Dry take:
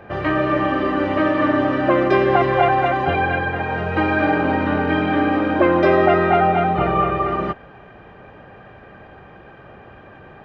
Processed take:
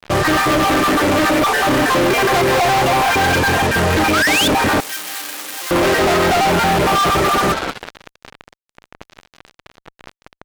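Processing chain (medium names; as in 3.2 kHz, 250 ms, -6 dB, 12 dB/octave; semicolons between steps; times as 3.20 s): random holes in the spectrogram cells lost 27%; frequency-shifting echo 189 ms, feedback 51%, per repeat +130 Hz, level -14.5 dB; 4.13–4.48 s: painted sound rise 1.2–3.7 kHz -19 dBFS; fuzz box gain 36 dB, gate -35 dBFS; 4.80–5.71 s: differentiator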